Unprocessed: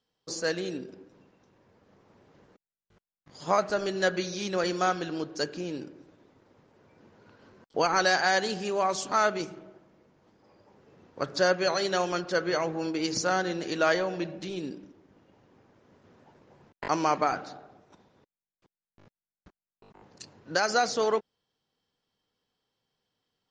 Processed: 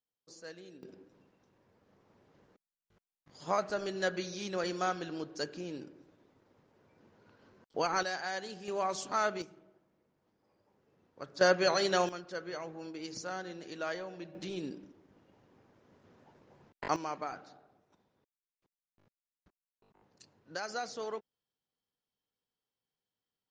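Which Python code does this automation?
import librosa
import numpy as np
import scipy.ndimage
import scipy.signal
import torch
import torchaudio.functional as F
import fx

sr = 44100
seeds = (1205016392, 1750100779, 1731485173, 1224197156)

y = fx.gain(x, sr, db=fx.steps((0.0, -18.5), (0.83, -6.5), (8.03, -13.0), (8.68, -6.5), (9.42, -13.5), (11.41, -1.5), (12.09, -13.0), (14.35, -4.0), (16.96, -13.0)))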